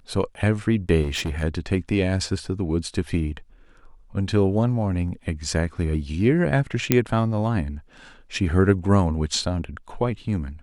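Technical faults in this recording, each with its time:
1.02–1.44 s: clipped -22.5 dBFS
6.92 s: pop -2 dBFS

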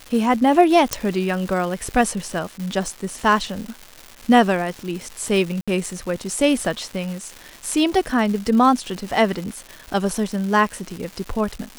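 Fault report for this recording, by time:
crackle 380 per s -28 dBFS
0.93 s: pop
5.61–5.68 s: dropout 66 ms

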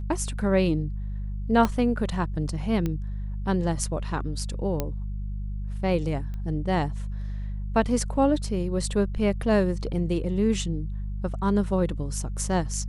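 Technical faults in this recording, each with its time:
hum 50 Hz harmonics 4 -31 dBFS
1.65 s: pop -11 dBFS
2.86 s: pop -16 dBFS
4.80 s: pop -12 dBFS
6.34 s: pop -26 dBFS

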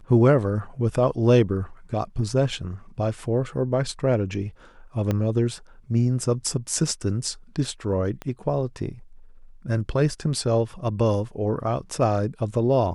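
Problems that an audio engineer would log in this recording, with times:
5.11 s: pop -12 dBFS
8.22 s: pop -19 dBFS

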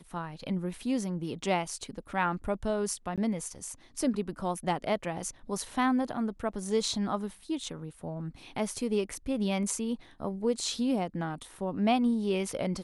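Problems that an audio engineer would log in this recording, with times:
3.16–3.18 s: dropout 17 ms

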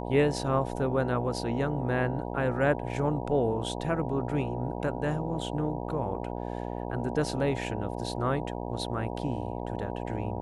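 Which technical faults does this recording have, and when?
buzz 60 Hz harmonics 16 -35 dBFS

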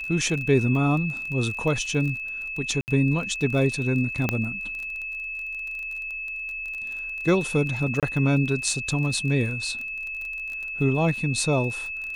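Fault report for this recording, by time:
crackle 29 per s -31 dBFS
whine 2.6 kHz -30 dBFS
2.81–2.88 s: dropout 69 ms
4.29 s: pop -9 dBFS
8.00–8.03 s: dropout 27 ms

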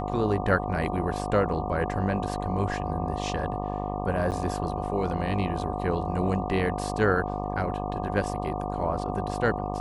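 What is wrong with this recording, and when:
buzz 50 Hz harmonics 24 -32 dBFS
whine 730 Hz -34 dBFS
4.31–4.32 s: dropout 9.4 ms

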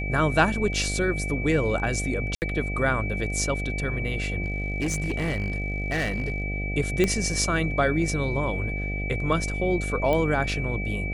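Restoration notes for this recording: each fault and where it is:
buzz 50 Hz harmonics 15 -30 dBFS
whine 2.3 kHz -32 dBFS
2.35–2.42 s: dropout 69 ms
4.44–6.42 s: clipped -22 dBFS
7.04 s: pop -9 dBFS
10.13 s: pop -14 dBFS

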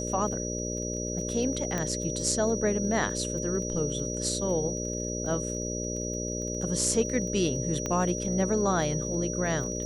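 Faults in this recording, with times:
buzz 60 Hz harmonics 10 -34 dBFS
crackle 24 per s -38 dBFS
whine 5.8 kHz -35 dBFS
1.78 s: pop -16 dBFS
7.86 s: pop -17 dBFS

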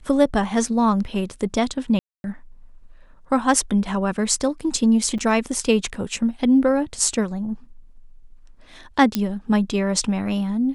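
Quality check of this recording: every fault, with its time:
1.99–2.24 s: dropout 251 ms
5.18 s: dropout 4.4 ms
9.15 s: pop -5 dBFS

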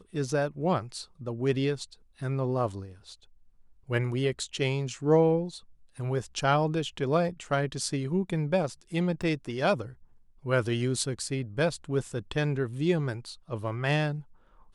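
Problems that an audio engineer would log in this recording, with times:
9.22 s: dropout 2 ms

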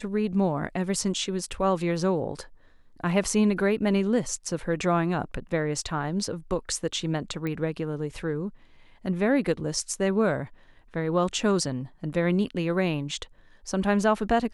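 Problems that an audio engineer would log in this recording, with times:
7.47 s: pop -20 dBFS

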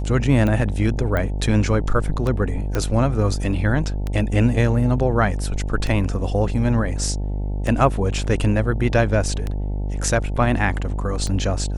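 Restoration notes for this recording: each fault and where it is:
buzz 50 Hz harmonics 18 -24 dBFS
tick 33 1/3 rpm -13 dBFS
1.17 s: pop -12 dBFS
2.75 s: pop -10 dBFS

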